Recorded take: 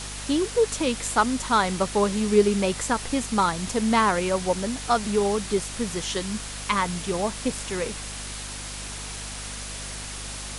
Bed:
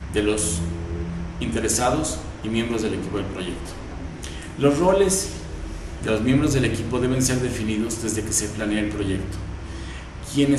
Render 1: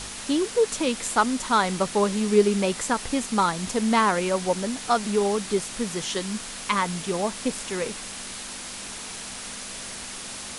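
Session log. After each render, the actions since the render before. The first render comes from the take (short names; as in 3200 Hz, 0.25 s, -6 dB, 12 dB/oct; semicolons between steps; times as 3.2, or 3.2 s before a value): de-hum 50 Hz, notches 3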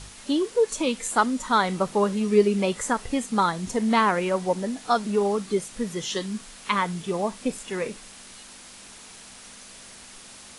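noise print and reduce 9 dB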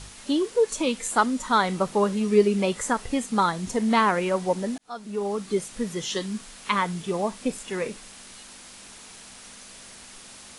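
4.78–5.6 fade in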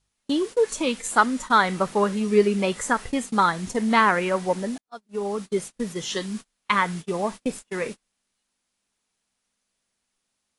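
gate -33 dBFS, range -33 dB; dynamic EQ 1700 Hz, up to +6 dB, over -37 dBFS, Q 1.3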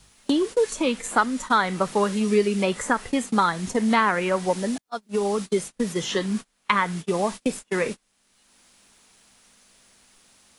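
three-band squash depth 70%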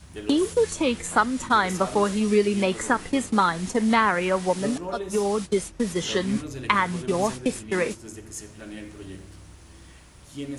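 add bed -15.5 dB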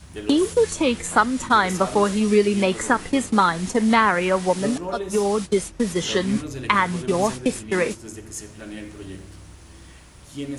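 gain +3 dB; limiter -2 dBFS, peak gain reduction 1.5 dB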